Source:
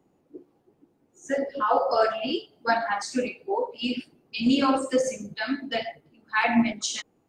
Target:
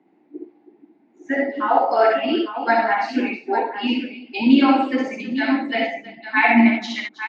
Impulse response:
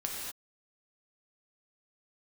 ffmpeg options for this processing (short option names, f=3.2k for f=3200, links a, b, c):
-af "highpass=f=200:w=0.5412,highpass=f=200:w=1.3066,equalizer=f=300:t=q:w=4:g=7,equalizer=f=510:t=q:w=4:g=-10,equalizer=f=800:t=q:w=4:g=4,equalizer=f=1.2k:t=q:w=4:g=-7,equalizer=f=2.1k:t=q:w=4:g=8,equalizer=f=3.1k:t=q:w=4:g=-5,lowpass=f=3.7k:w=0.5412,lowpass=f=3.7k:w=1.3066,aecho=1:1:61|70|321|855:0.631|0.531|0.15|0.316,volume=4.5dB"